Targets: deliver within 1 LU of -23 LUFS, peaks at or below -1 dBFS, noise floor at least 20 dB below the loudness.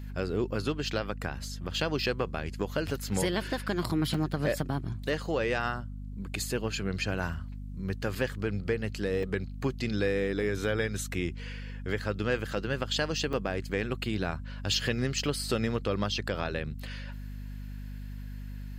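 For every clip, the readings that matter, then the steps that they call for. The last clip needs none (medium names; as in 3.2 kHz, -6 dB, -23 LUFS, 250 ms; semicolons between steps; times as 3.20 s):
dropouts 4; longest dropout 3.8 ms; hum 50 Hz; highest harmonic 250 Hz; hum level -37 dBFS; loudness -32.0 LUFS; peak level -15.0 dBFS; loudness target -23.0 LUFS
-> interpolate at 4.14/8.15/9.23/13.33 s, 3.8 ms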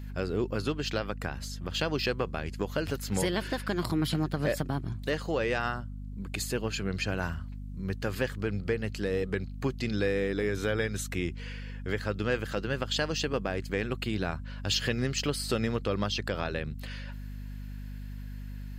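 dropouts 0; hum 50 Hz; highest harmonic 250 Hz; hum level -37 dBFS
-> hum notches 50/100/150/200/250 Hz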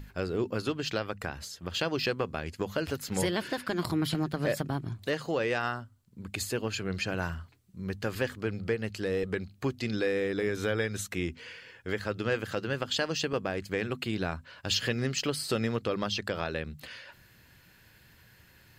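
hum not found; loudness -32.0 LUFS; peak level -15.0 dBFS; loudness target -23.0 LUFS
-> trim +9 dB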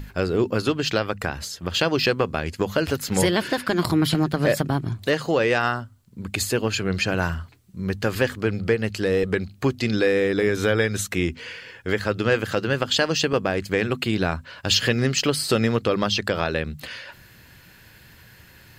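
loudness -23.0 LUFS; peak level -6.0 dBFS; noise floor -51 dBFS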